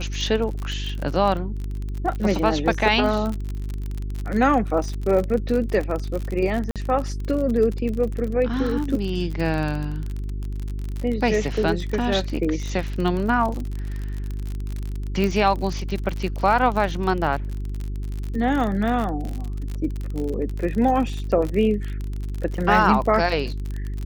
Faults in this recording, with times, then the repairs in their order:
crackle 44/s -26 dBFS
hum 50 Hz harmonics 8 -28 dBFS
6.71–6.76 gap 47 ms
15.24 pop -12 dBFS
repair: de-click; de-hum 50 Hz, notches 8; interpolate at 6.71, 47 ms

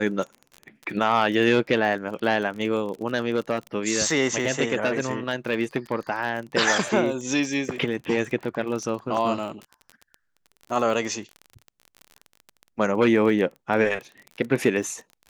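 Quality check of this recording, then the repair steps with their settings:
crackle 27/s -31 dBFS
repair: de-click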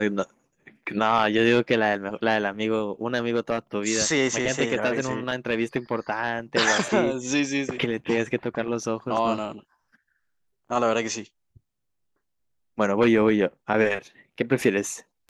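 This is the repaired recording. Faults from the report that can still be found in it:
none

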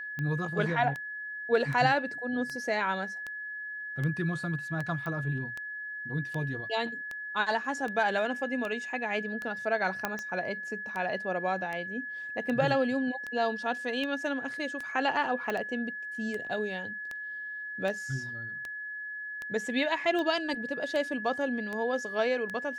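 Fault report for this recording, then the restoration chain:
tick 78 rpm -23 dBFS
tone 1700 Hz -36 dBFS
5.06 pop -25 dBFS
10.05 pop -14 dBFS
15.5 pop -19 dBFS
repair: de-click; notch 1700 Hz, Q 30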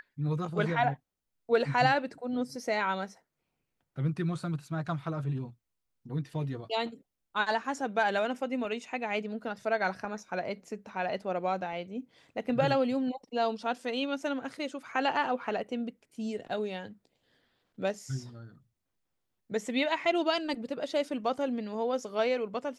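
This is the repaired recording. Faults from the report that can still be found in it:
none

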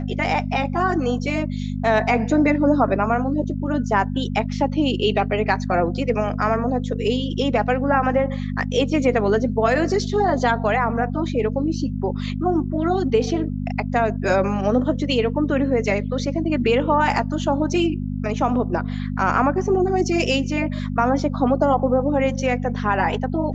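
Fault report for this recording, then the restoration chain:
hum 50 Hz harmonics 5 -26 dBFS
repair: de-hum 50 Hz, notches 5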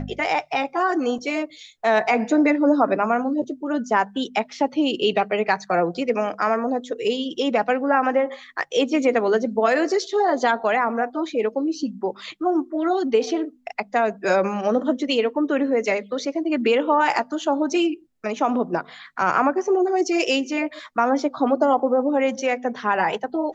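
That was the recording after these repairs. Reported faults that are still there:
none

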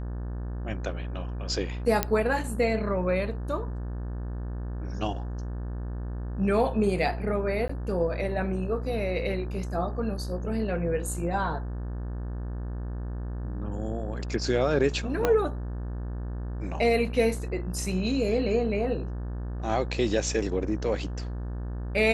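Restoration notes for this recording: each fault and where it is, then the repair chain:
buzz 60 Hz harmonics 30 -33 dBFS
2.03 pop -7 dBFS
7.68–7.69 gap 14 ms
15.25 pop -10 dBFS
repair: de-click; de-hum 60 Hz, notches 30; interpolate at 7.68, 14 ms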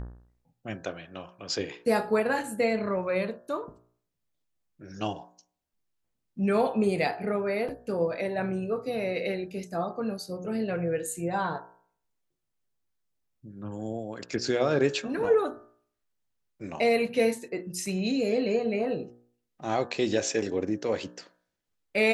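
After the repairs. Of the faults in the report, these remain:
15.25 pop

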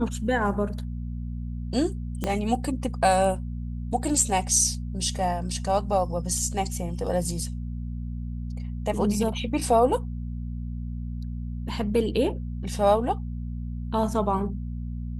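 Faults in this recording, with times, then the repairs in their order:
hum 60 Hz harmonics 4 -32 dBFS
2.24 pop -13 dBFS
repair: de-click; de-hum 60 Hz, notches 4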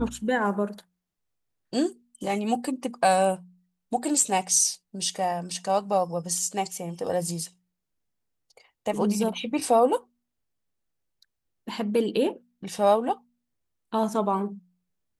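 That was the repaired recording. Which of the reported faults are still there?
2.24 pop

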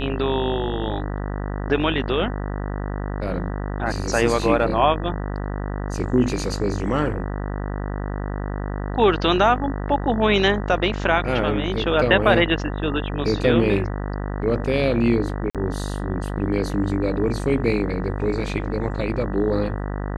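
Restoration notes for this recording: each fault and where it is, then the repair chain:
buzz 50 Hz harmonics 39 -27 dBFS
15.5–15.55 gap 47 ms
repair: de-hum 50 Hz, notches 39; interpolate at 15.5, 47 ms

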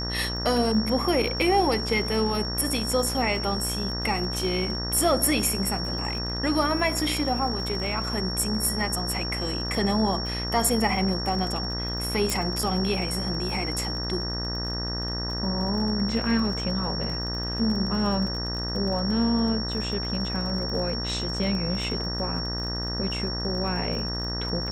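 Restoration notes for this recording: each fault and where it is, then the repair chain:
buzz 60 Hz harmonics 32 -32 dBFS
crackle 34/s -33 dBFS
tone 5500 Hz -31 dBFS
12.3 pop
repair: de-click; de-hum 60 Hz, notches 32; notch 5500 Hz, Q 30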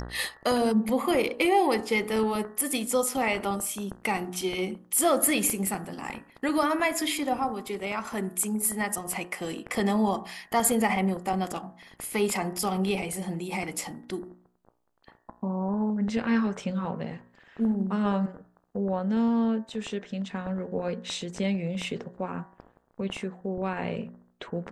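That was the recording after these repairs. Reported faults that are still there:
12.3 pop

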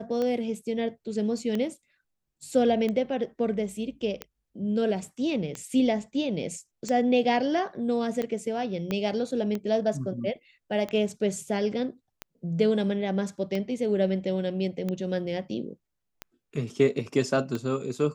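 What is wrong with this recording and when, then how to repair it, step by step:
tick 45 rpm -18 dBFS
8.91 pop -16 dBFS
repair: de-click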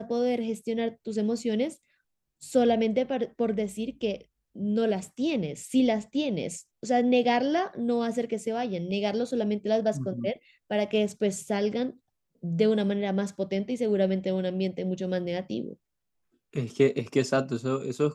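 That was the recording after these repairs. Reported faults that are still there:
8.91 pop

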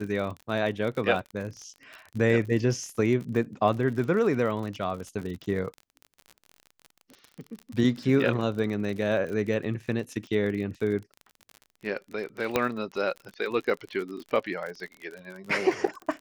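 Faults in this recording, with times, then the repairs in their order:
crackle 44/s -34 dBFS
12.56 pop -9 dBFS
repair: de-click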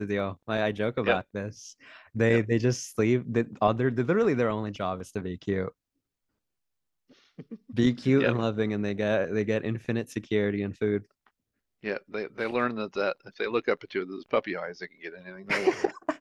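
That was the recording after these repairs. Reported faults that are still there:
none

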